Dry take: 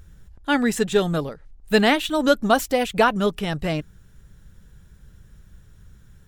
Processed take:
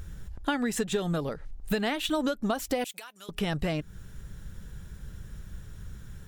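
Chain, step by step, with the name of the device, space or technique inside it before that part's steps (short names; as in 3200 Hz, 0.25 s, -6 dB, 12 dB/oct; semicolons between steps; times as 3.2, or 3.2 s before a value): serial compression, leveller first (compressor 2.5:1, threshold -21 dBFS, peak gain reduction 7.5 dB; compressor 6:1, threshold -32 dBFS, peak gain reduction 14.5 dB); 2.84–3.29 differentiator; gain +6 dB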